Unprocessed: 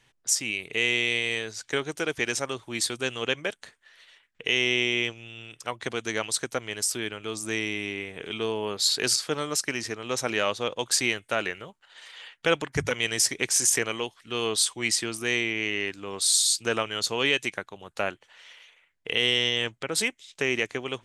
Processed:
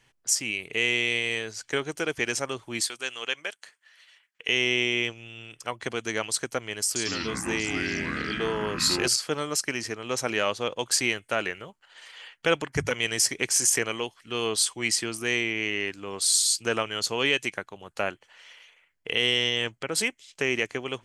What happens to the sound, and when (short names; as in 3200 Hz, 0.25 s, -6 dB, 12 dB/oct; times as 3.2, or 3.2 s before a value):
2.81–4.49 HPF 1200 Hz 6 dB/oct
6.86–9.08 echoes that change speed 96 ms, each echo -4 st, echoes 3
whole clip: notch 3700 Hz, Q 10